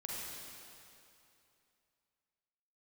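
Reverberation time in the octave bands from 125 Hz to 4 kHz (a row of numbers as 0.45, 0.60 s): 2.7, 2.7, 2.7, 2.7, 2.6, 2.4 s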